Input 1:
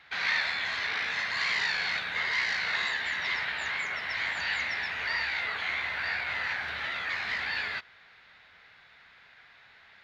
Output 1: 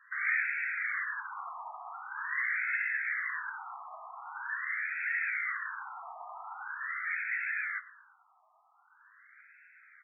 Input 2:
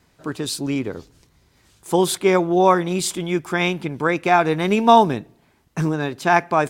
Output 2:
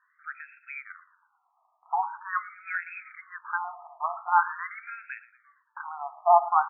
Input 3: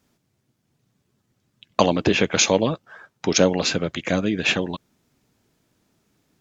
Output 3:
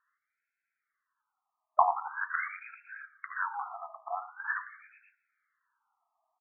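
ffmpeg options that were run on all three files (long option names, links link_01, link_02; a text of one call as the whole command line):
ffmpeg -i in.wav -filter_complex "[0:a]lowpass=2700,bandreject=frequency=56.04:width_type=h:width=4,bandreject=frequency=112.08:width_type=h:width=4,bandreject=frequency=168.12:width_type=h:width=4,bandreject=frequency=224.16:width_type=h:width=4,bandreject=frequency=280.2:width_type=h:width=4,bandreject=frequency=336.24:width_type=h:width=4,bandreject=frequency=392.28:width_type=h:width=4,bandreject=frequency=448.32:width_type=h:width=4,bandreject=frequency=504.36:width_type=h:width=4,bandreject=frequency=560.4:width_type=h:width=4,bandreject=frequency=616.44:width_type=h:width=4,bandreject=frequency=672.48:width_type=h:width=4,bandreject=frequency=728.52:width_type=h:width=4,bandreject=frequency=784.56:width_type=h:width=4,bandreject=frequency=840.6:width_type=h:width=4,bandreject=frequency=896.64:width_type=h:width=4,bandreject=frequency=952.68:width_type=h:width=4,bandreject=frequency=1008.72:width_type=h:width=4,bandreject=frequency=1064.76:width_type=h:width=4,bandreject=frequency=1120.8:width_type=h:width=4,bandreject=frequency=1176.84:width_type=h:width=4,bandreject=frequency=1232.88:width_type=h:width=4,bandreject=frequency=1288.92:width_type=h:width=4,bandreject=frequency=1344.96:width_type=h:width=4,bandreject=frequency=1401:width_type=h:width=4,bandreject=frequency=1457.04:width_type=h:width=4,asplit=2[link_01][link_02];[link_02]aecho=0:1:115|230|345|460|575:0.133|0.0707|0.0375|0.0199|0.0105[link_03];[link_01][link_03]amix=inputs=2:normalize=0,afftfilt=real='re*between(b*sr/1024,900*pow(1900/900,0.5+0.5*sin(2*PI*0.44*pts/sr))/1.41,900*pow(1900/900,0.5+0.5*sin(2*PI*0.44*pts/sr))*1.41)':imag='im*between(b*sr/1024,900*pow(1900/900,0.5+0.5*sin(2*PI*0.44*pts/sr))/1.41,900*pow(1900/900,0.5+0.5*sin(2*PI*0.44*pts/sr))*1.41)':win_size=1024:overlap=0.75" out.wav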